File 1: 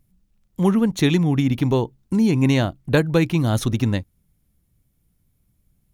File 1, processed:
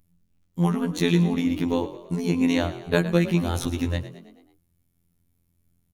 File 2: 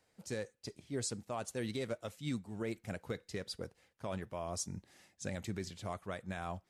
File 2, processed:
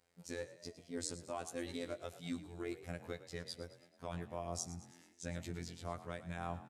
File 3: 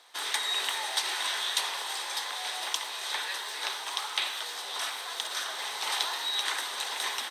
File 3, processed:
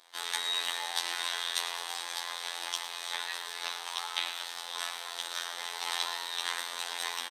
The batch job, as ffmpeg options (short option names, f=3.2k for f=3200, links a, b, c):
-filter_complex "[0:a]afftfilt=real='hypot(re,im)*cos(PI*b)':imag='0':win_size=2048:overlap=0.75,asplit=6[a][b][c][d][e][f];[b]adelay=109,afreqshift=43,volume=-14.5dB[g];[c]adelay=218,afreqshift=86,volume=-20dB[h];[d]adelay=327,afreqshift=129,volume=-25.5dB[i];[e]adelay=436,afreqshift=172,volume=-31dB[j];[f]adelay=545,afreqshift=215,volume=-36.6dB[k];[a][g][h][i][j][k]amix=inputs=6:normalize=0"